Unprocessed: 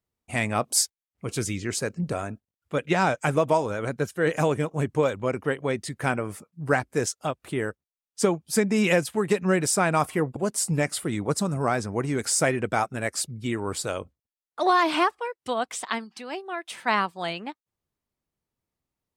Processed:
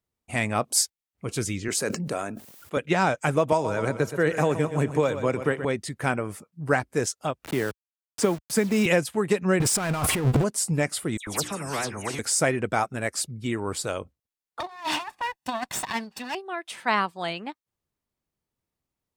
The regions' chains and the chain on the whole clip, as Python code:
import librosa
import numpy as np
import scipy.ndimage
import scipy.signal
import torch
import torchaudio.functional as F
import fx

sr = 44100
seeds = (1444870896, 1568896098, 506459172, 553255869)

y = fx.chain(x, sr, fx.highpass(hz=190.0, slope=12),
    fx.high_shelf(hz=9600.0, db=8.0),
    fx.sustainer(db_per_s=45.0), at=(1.68, 2.77))
y = fx.chain(y, sr, fx.notch(hz=3100.0, q=19.0),
    fx.echo_feedback(ms=122, feedback_pct=49, wet_db=-12.5),
    fx.band_squash(depth_pct=70), at=(3.52, 5.65))
y = fx.chain(y, sr, fx.delta_hold(step_db=-36.5),
    fx.highpass(hz=53.0, slope=12),
    fx.band_squash(depth_pct=40), at=(7.44, 8.86))
y = fx.chain(y, sr, fx.low_shelf(hz=120.0, db=9.0),
    fx.over_compress(threshold_db=-30.0, ratio=-0.5),
    fx.power_curve(exponent=0.5), at=(9.6, 10.44))
y = fx.chain(y, sr, fx.hum_notches(base_hz=60, count=6),
    fx.dispersion(late='lows', ms=101.0, hz=2600.0),
    fx.spectral_comp(ratio=2.0), at=(11.17, 12.19))
y = fx.chain(y, sr, fx.lower_of_two(delay_ms=1.1),
    fx.highpass(hz=110.0, slope=12),
    fx.over_compress(threshold_db=-29.0, ratio=-0.5), at=(14.6, 16.35))